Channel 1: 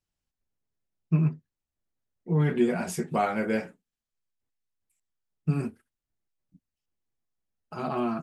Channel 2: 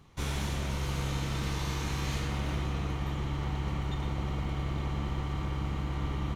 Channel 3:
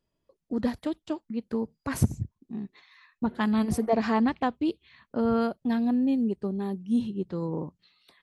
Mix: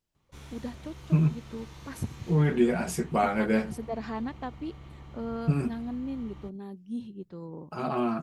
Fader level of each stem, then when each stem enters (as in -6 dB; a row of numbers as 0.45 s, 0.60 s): +0.5 dB, -14.0 dB, -10.0 dB; 0.00 s, 0.15 s, 0.00 s